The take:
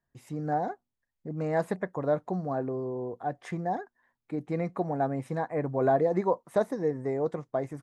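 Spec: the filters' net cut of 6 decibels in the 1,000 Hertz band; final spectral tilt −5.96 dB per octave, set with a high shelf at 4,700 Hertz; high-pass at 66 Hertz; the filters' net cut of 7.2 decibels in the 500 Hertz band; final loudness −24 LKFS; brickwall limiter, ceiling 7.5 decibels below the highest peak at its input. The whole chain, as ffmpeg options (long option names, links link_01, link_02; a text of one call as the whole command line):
ffmpeg -i in.wav -af "highpass=66,equalizer=frequency=500:width_type=o:gain=-8,equalizer=frequency=1000:width_type=o:gain=-4,highshelf=frequency=4700:gain=-7,volume=13.5dB,alimiter=limit=-12.5dB:level=0:latency=1" out.wav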